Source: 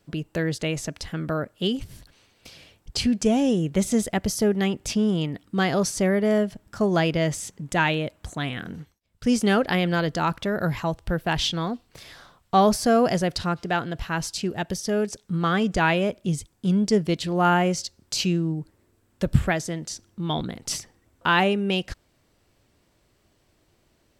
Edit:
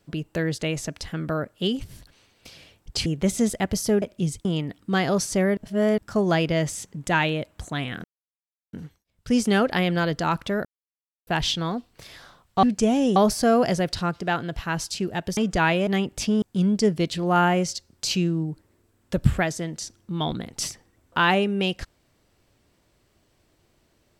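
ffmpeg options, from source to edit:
-filter_complex "[0:a]asplit=14[s0][s1][s2][s3][s4][s5][s6][s7][s8][s9][s10][s11][s12][s13];[s0]atrim=end=3.062[s14];[s1]atrim=start=3.588:end=4.552[s15];[s2]atrim=start=16.078:end=16.512[s16];[s3]atrim=start=5.098:end=6.222[s17];[s4]atrim=start=6.218:end=6.632,asetpts=PTS-STARTPTS,areverse[s18];[s5]atrim=start=6.628:end=8.69,asetpts=PTS-STARTPTS,afade=t=out:st=2.058:d=0.004:c=hsin,apad=pad_dur=0.69[s19];[s6]atrim=start=8.69:end=10.61,asetpts=PTS-STARTPTS,afade=t=in:d=0.004:c=hsin,afade=t=out:st=1.916:d=0.004:c=hsin[s20];[s7]atrim=start=10.61:end=11.23,asetpts=PTS-STARTPTS,volume=0[s21];[s8]atrim=start=11.23:end=12.592,asetpts=PTS-STARTPTS,afade=t=in:d=0.004:c=hsin[s22];[s9]atrim=start=3.058:end=3.592[s23];[s10]atrim=start=12.588:end=14.802[s24];[s11]atrim=start=15.578:end=16.082[s25];[s12]atrim=start=4.548:end=5.102[s26];[s13]atrim=start=16.508[s27];[s14][s15]acrossfade=d=0.004:c1=hsin:c2=hsin[s28];[s28][s16]acrossfade=d=0.004:c1=hsin:c2=hsin[s29];[s29][s17]acrossfade=d=0.004:c1=hsin:c2=hsin[s30];[s30][s18]acrossfade=d=0.004:c1=hsin:c2=hsin[s31];[s19][s20][s21][s22]concat=n=4:v=0:a=1[s32];[s31][s32]acrossfade=d=0.004:c1=hsin:c2=hsin[s33];[s33][s23]acrossfade=d=0.004:c1=hsin:c2=hsin[s34];[s34][s24]acrossfade=d=0.004:c1=hsin:c2=hsin[s35];[s35][s25]acrossfade=d=0.004:c1=hsin:c2=hsin[s36];[s36][s26]acrossfade=d=0.004:c1=hsin:c2=hsin[s37];[s37][s27]acrossfade=d=0.004:c1=hsin:c2=hsin"

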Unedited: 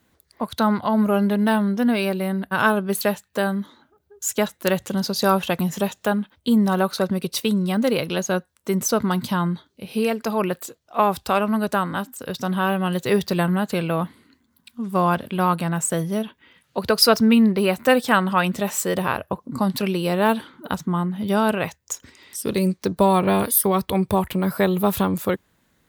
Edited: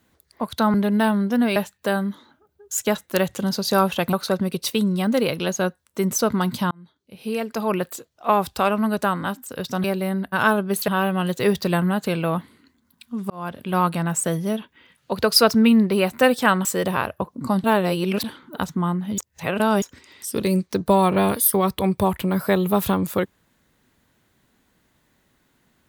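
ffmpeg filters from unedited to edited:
-filter_complex "[0:a]asplit=13[s0][s1][s2][s3][s4][s5][s6][s7][s8][s9][s10][s11][s12];[s0]atrim=end=0.742[s13];[s1]atrim=start=1.208:end=2.032[s14];[s2]atrim=start=3.068:end=5.642[s15];[s3]atrim=start=6.828:end=9.41,asetpts=PTS-STARTPTS,afade=t=out:st=2.578:d=0.004:c=hsin[s16];[s4]atrim=start=9.41:end=12.542,asetpts=PTS-STARTPTS,afade=t=in:d=1.04[s17];[s5]atrim=start=2.028:end=3.072[s18];[s6]atrim=start=12.538:end=14.96,asetpts=PTS-STARTPTS,afade=t=out:st=2.418:d=0.004:c=hsin[s19];[s7]atrim=start=14.96:end=18.312,asetpts=PTS-STARTPTS,afade=t=in:d=0.49[s20];[s8]atrim=start=18.758:end=19.752[s21];[s9]atrim=start=19.748:end=20.352,asetpts=PTS-STARTPTS,areverse[s22];[s10]atrim=start=20.348:end=21.292[s23];[s11]atrim=start=21.288:end=21.932,asetpts=PTS-STARTPTS,areverse[s24];[s12]atrim=start=21.928[s25];[s13][s14]acrossfade=d=0.004:c1=hsin:c2=hsin[s26];[s26][s15]acrossfade=d=0.004:c1=hsin:c2=hsin[s27];[s16][s17]concat=n=2:v=0:a=1[s28];[s27][s28]acrossfade=d=0.004:c1=hsin:c2=hsin[s29];[s29][s18]acrossfade=d=0.004:c1=hsin:c2=hsin[s30];[s19][s20]concat=n=2:v=0:a=1[s31];[s30][s31]acrossfade=d=0.004:c1=hsin:c2=hsin[s32];[s32][s21]acrossfade=d=0.004:c1=hsin:c2=hsin[s33];[s33][s22]acrossfade=d=0.004:c1=hsin:c2=hsin[s34];[s34][s23]acrossfade=d=0.004:c1=hsin:c2=hsin[s35];[s35][s24]acrossfade=d=0.004:c1=hsin:c2=hsin[s36];[s36][s25]acrossfade=d=0.004:c1=hsin:c2=hsin"

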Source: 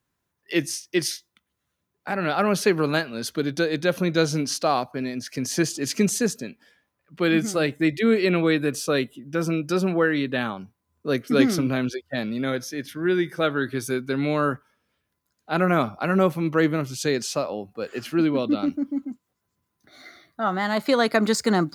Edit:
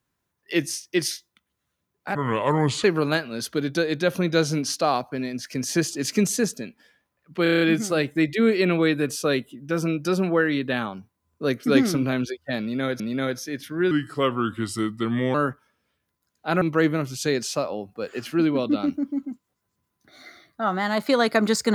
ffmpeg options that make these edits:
-filter_complex "[0:a]asplit=13[s0][s1][s2][s3][s4][s5][s6][s7][s8][s9][s10][s11][s12];[s0]atrim=end=2.154[s13];[s1]atrim=start=2.15:end=2.66,asetpts=PTS-STARTPTS,asetrate=32634,aresample=44100,atrim=end_sample=30393,asetpts=PTS-STARTPTS[s14];[s2]atrim=start=2.656:end=7.282[s15];[s3]atrim=start=7.248:end=7.282[s16];[s4]atrim=start=7.248:end=7.282[s17];[s5]atrim=start=7.248:end=7.282[s18];[s6]atrim=start=7.248:end=7.282[s19];[s7]atrim=start=7.248:end=7.282[s20];[s8]atrim=start=7.248:end=12.642[s21];[s9]atrim=start=12.248:end=13.164[s22];[s10]atrim=start=13.16:end=14.38,asetpts=PTS-STARTPTS,asetrate=37485,aresample=44100,atrim=end_sample=63296,asetpts=PTS-STARTPTS[s23];[s11]atrim=start=14.376:end=15.652[s24];[s12]atrim=start=16.408[s25];[s13][s14]acrossfade=d=0.004:c1=hsin:c2=hsin[s26];[s26][s15]acrossfade=d=0.004:c1=hsin:c2=hsin[s27];[s27][s16]acrossfade=d=0.004:c1=hsin:c2=hsin[s28];[s28][s17]acrossfade=d=0.004:c1=hsin:c2=hsin[s29];[s29][s18]acrossfade=d=0.004:c1=hsin:c2=hsin[s30];[s30][s19]acrossfade=d=0.004:c1=hsin:c2=hsin[s31];[s31][s20]acrossfade=d=0.004:c1=hsin:c2=hsin[s32];[s32][s21]acrossfade=d=0.004:c1=hsin:c2=hsin[s33];[s33][s22]acrossfade=d=0.004:c1=hsin:c2=hsin[s34];[s34][s23]acrossfade=d=0.004:c1=hsin:c2=hsin[s35];[s35][s24]acrossfade=d=0.004:c1=hsin:c2=hsin[s36];[s36][s25]acrossfade=d=0.004:c1=hsin:c2=hsin"

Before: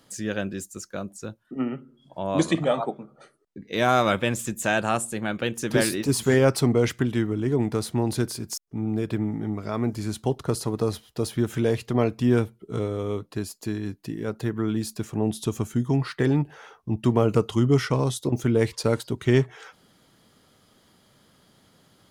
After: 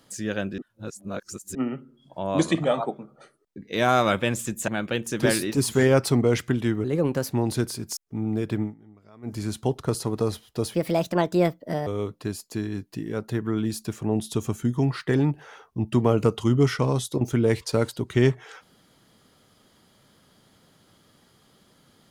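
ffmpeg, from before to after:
-filter_complex "[0:a]asplit=10[s0][s1][s2][s3][s4][s5][s6][s7][s8][s9];[s0]atrim=end=0.582[s10];[s1]atrim=start=0.578:end=1.552,asetpts=PTS-STARTPTS,areverse[s11];[s2]atrim=start=1.548:end=4.682[s12];[s3]atrim=start=5.188:end=7.354[s13];[s4]atrim=start=7.35:end=7.93,asetpts=PTS-STARTPTS,asetrate=52920,aresample=44100[s14];[s5]atrim=start=7.926:end=9.35,asetpts=PTS-STARTPTS,afade=t=out:st=1.304:d=0.12:silence=0.0794328[s15];[s6]atrim=start=9.35:end=9.83,asetpts=PTS-STARTPTS,volume=0.0794[s16];[s7]atrim=start=9.83:end=11.354,asetpts=PTS-STARTPTS,afade=t=in:d=0.12:silence=0.0794328[s17];[s8]atrim=start=11.35:end=12.98,asetpts=PTS-STARTPTS,asetrate=63945,aresample=44100,atrim=end_sample=49574,asetpts=PTS-STARTPTS[s18];[s9]atrim=start=12.976[s19];[s10][s11]acrossfade=d=0.004:c1=hsin:c2=hsin[s20];[s20][s12]acrossfade=d=0.004:c1=hsin:c2=hsin[s21];[s21][s13]acrossfade=d=0.004:c1=hsin:c2=hsin[s22];[s22][s14]acrossfade=d=0.004:c1=hsin:c2=hsin[s23];[s15][s16][s17]concat=n=3:v=0:a=1[s24];[s23][s24]acrossfade=d=0.004:c1=hsin:c2=hsin[s25];[s25][s18]acrossfade=d=0.004:c1=hsin:c2=hsin[s26];[s26][s19]acrossfade=d=0.004:c1=hsin:c2=hsin"

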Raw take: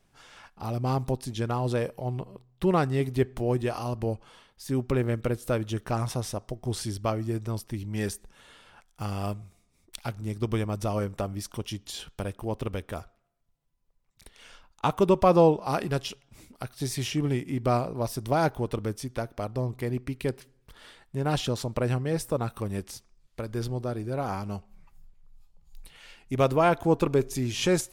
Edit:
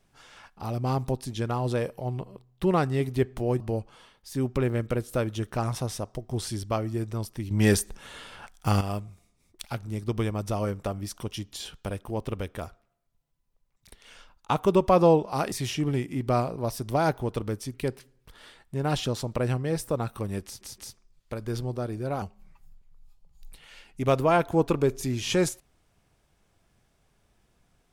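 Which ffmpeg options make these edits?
-filter_complex "[0:a]asplit=9[s0][s1][s2][s3][s4][s5][s6][s7][s8];[s0]atrim=end=3.602[s9];[s1]atrim=start=3.938:end=7.852[s10];[s2]atrim=start=7.848:end=9.152,asetpts=PTS-STARTPTS,volume=2.99[s11];[s3]atrim=start=9.148:end=15.862[s12];[s4]atrim=start=16.888:end=19.112[s13];[s5]atrim=start=20.148:end=23.022[s14];[s6]atrim=start=22.848:end=23.022[s15];[s7]atrim=start=22.848:end=24.292[s16];[s8]atrim=start=24.538[s17];[s9][s10]acrossfade=d=0.004:c1=hsin:c2=hsin[s18];[s18][s11]acrossfade=d=0.004:c1=hsin:c2=hsin[s19];[s19][s12]acrossfade=d=0.004:c1=hsin:c2=hsin[s20];[s20][s13]acrossfade=d=0.004:c1=hsin:c2=hsin[s21];[s21][s14]acrossfade=d=0.004:c1=hsin:c2=hsin[s22];[s22][s15]acrossfade=d=0.004:c1=hsin:c2=hsin[s23];[s23][s16]acrossfade=d=0.004:c1=hsin:c2=hsin[s24];[s24][s17]acrossfade=d=0.004:c1=hsin:c2=hsin"

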